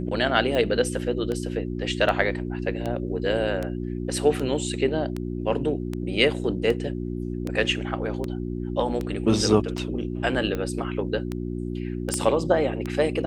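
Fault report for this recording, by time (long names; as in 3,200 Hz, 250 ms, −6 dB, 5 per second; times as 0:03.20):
mains hum 60 Hz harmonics 6 −30 dBFS
scratch tick 78 rpm −16 dBFS
0:12.14: click −10 dBFS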